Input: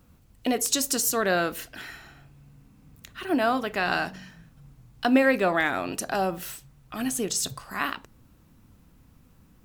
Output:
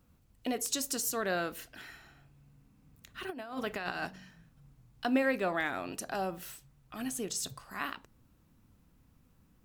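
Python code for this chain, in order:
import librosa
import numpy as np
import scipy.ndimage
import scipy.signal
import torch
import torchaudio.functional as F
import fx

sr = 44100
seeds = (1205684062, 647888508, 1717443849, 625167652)

y = fx.over_compress(x, sr, threshold_db=-28.0, ratio=-0.5, at=(3.14, 4.07))
y = F.gain(torch.from_numpy(y), -8.5).numpy()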